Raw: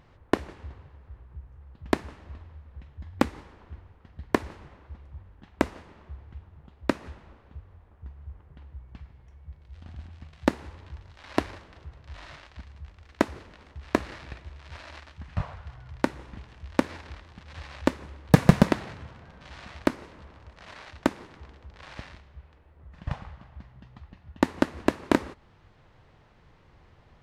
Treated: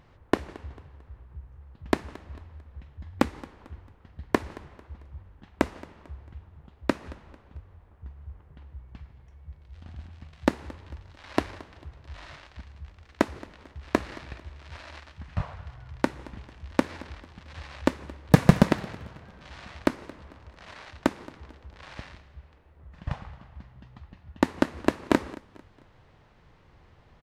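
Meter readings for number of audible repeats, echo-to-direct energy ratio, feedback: 2, -20.5 dB, 38%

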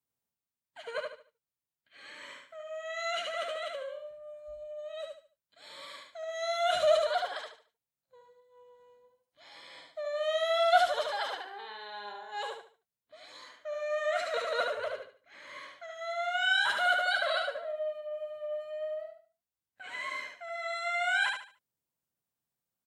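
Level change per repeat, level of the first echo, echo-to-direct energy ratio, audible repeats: -10.5 dB, -4.0 dB, -3.5 dB, 3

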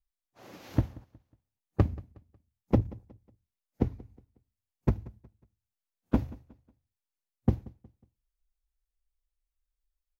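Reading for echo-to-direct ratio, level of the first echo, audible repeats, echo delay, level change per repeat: -21.5 dB, -22.0 dB, 2, 182 ms, -9.0 dB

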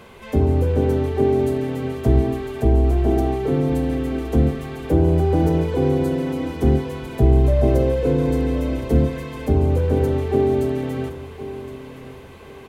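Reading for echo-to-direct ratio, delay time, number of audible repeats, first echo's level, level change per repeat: -13.5 dB, 1067 ms, 2, -14.0 dB, -11.0 dB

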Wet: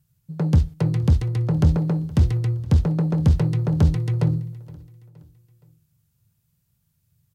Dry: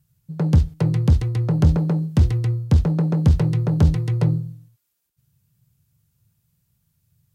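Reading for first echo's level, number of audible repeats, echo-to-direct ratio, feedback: -22.0 dB, 2, -21.0 dB, 45%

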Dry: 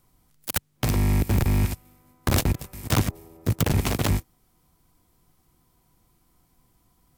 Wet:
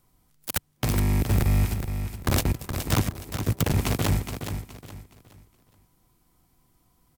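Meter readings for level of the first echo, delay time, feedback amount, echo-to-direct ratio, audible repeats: -8.0 dB, 419 ms, 31%, -7.5 dB, 3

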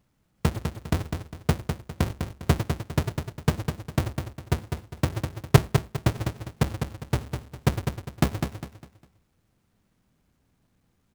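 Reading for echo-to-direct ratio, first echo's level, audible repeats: -6.0 dB, -6.5 dB, 3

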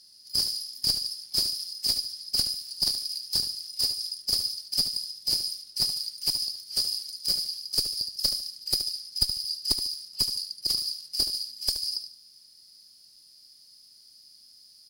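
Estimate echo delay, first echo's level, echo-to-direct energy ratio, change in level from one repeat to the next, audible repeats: 73 ms, -10.0 dB, -9.5 dB, -10.5 dB, 3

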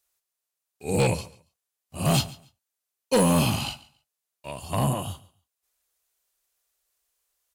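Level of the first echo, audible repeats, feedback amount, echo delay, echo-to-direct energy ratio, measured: -20.5 dB, 2, 20%, 140 ms, -20.5 dB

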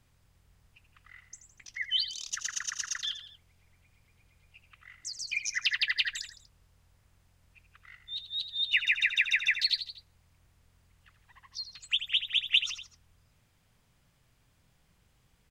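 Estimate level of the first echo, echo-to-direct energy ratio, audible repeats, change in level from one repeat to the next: -11.0 dB, -9.5 dB, 3, -5.5 dB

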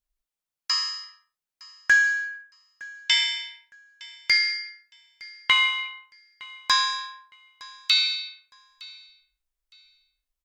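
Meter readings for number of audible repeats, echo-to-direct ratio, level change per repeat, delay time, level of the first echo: 2, -22.5 dB, -12.5 dB, 912 ms, -22.5 dB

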